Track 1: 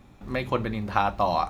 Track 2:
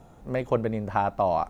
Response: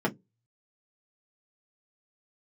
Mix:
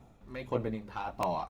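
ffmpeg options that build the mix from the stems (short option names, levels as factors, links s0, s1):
-filter_complex "[0:a]asoftclip=type=tanh:threshold=0.188,aphaser=in_gain=1:out_gain=1:delay=2.3:decay=0.33:speed=1.6:type=sinusoidal,aeval=exprs='(mod(4.47*val(0)+1,2)-1)/4.47':c=same,volume=0.211[s0];[1:a]flanger=delay=15.5:depth=7.8:speed=1.6,tremolo=f=1.6:d=0.89,bandreject=f=1600:w=5.5,volume=-1,adelay=1.7,volume=0.631[s1];[s0][s1]amix=inputs=2:normalize=0"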